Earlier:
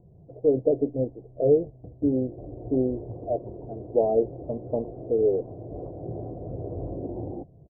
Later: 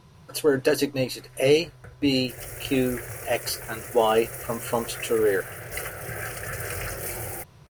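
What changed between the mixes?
background: add static phaser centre 1 kHz, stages 6; master: remove Chebyshev low-pass 700 Hz, order 5

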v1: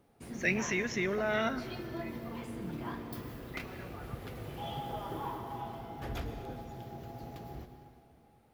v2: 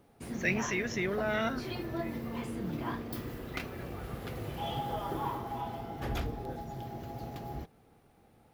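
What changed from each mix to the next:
background +5.5 dB; reverb: off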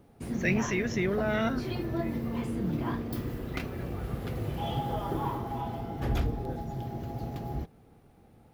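master: add bass shelf 410 Hz +7.5 dB

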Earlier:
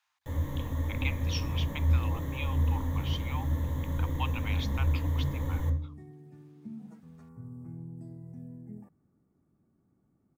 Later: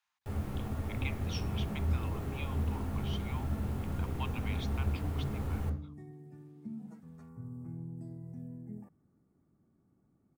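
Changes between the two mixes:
speech -6.0 dB; first sound: remove rippled EQ curve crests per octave 1.1, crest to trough 15 dB

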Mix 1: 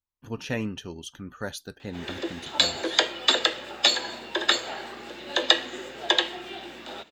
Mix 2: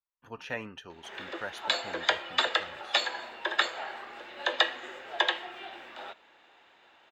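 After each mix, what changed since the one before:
background: entry -0.90 s; master: add three-band isolator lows -15 dB, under 560 Hz, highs -13 dB, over 2.7 kHz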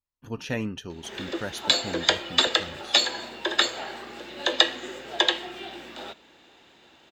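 master: remove three-band isolator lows -15 dB, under 560 Hz, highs -13 dB, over 2.7 kHz

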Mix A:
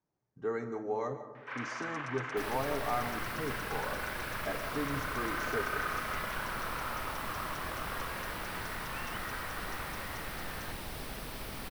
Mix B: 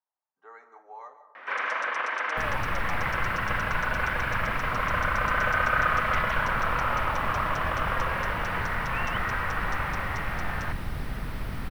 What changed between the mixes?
speech: add ladder high-pass 710 Hz, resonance 40%; first sound +11.5 dB; master: add tone controls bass +13 dB, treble -6 dB

